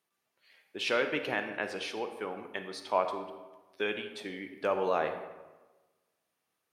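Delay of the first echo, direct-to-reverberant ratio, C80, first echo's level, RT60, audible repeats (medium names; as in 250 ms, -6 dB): no echo, 7.0 dB, 10.0 dB, no echo, 1.2 s, no echo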